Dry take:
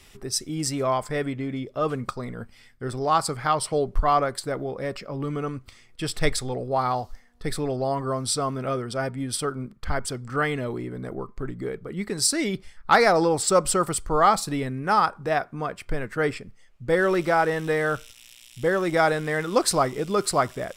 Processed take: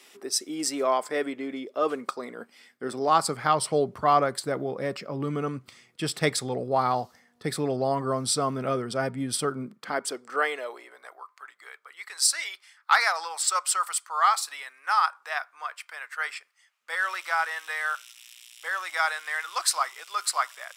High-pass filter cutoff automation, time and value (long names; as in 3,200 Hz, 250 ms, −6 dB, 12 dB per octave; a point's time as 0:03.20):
high-pass filter 24 dB per octave
0:02.35 280 Hz
0:03.61 130 Hz
0:09.53 130 Hz
0:10.18 330 Hz
0:11.28 990 Hz